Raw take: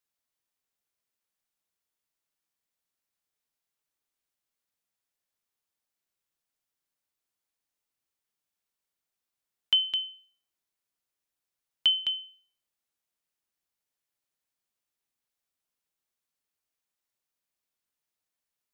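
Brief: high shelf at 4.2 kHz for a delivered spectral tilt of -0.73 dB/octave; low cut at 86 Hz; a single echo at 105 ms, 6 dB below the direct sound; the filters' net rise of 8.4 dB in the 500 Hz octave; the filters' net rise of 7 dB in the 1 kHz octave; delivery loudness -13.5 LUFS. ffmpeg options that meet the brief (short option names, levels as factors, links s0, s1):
-af "highpass=86,equalizer=f=500:t=o:g=8.5,equalizer=f=1000:t=o:g=6,highshelf=f=4200:g=7.5,aecho=1:1:105:0.501,volume=3.16"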